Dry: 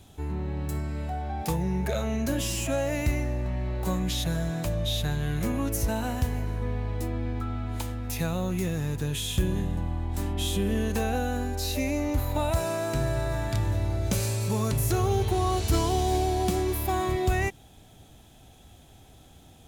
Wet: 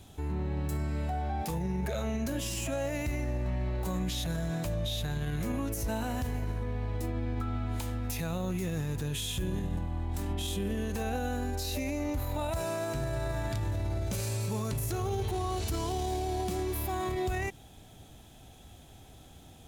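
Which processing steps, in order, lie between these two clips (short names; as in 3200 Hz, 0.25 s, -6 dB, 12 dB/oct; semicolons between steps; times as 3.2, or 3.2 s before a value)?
limiter -25 dBFS, peak gain reduction 10.5 dB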